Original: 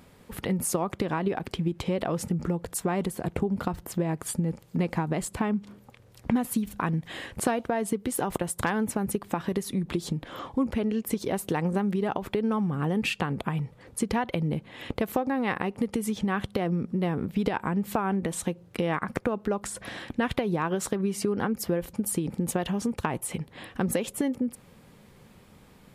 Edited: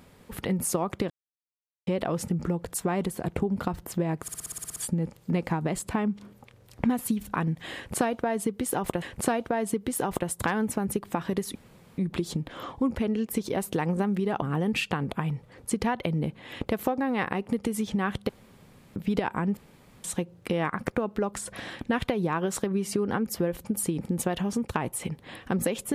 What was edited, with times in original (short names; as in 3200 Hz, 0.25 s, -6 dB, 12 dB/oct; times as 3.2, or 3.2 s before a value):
1.1–1.87 mute
4.22 stutter 0.06 s, 10 plays
7.21–8.48 loop, 2 plays
9.74 insert room tone 0.43 s
12.18–12.71 cut
16.58–17.25 room tone
17.86–18.33 room tone